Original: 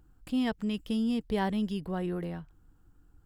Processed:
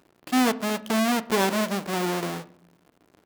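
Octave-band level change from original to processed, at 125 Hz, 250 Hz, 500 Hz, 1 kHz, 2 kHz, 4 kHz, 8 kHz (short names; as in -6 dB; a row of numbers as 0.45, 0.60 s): +2.0 dB, +4.0 dB, +9.0 dB, +12.0 dB, +13.0 dB, +11.0 dB, n/a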